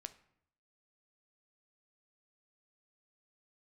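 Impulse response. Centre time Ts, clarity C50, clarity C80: 4 ms, 15.5 dB, 19.5 dB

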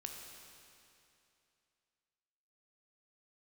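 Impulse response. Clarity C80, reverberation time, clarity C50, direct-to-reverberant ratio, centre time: 3.5 dB, 2.7 s, 2.5 dB, 1.5 dB, 90 ms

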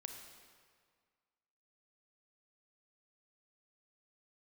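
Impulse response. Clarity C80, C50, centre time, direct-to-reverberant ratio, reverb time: 6.0 dB, 5.0 dB, 46 ms, 4.0 dB, 1.8 s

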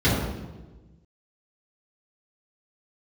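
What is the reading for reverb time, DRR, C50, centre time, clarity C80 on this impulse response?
1.2 s, −10.5 dB, 0.5 dB, 74 ms, 3.0 dB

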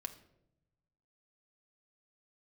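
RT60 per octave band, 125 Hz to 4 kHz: 1.7, 1.2, 1.0, 0.65, 0.60, 0.50 seconds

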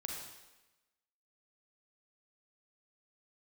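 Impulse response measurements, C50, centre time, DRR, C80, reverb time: 1.0 dB, 59 ms, −0.5 dB, 4.0 dB, 1.1 s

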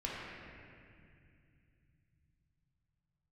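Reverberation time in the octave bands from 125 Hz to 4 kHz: 5.9, 3.7, 2.5, 2.1, 2.6, 2.2 seconds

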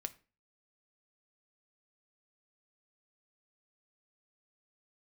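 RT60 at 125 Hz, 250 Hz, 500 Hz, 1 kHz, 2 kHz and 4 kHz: 0.45, 0.45, 0.40, 0.35, 0.35, 0.30 seconds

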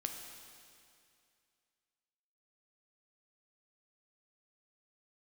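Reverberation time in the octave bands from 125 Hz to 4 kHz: 2.4, 2.4, 2.4, 2.4, 2.4, 2.3 seconds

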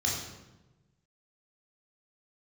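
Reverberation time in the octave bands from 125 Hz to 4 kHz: 1.7, 1.4, 1.2, 1.0, 0.85, 0.75 seconds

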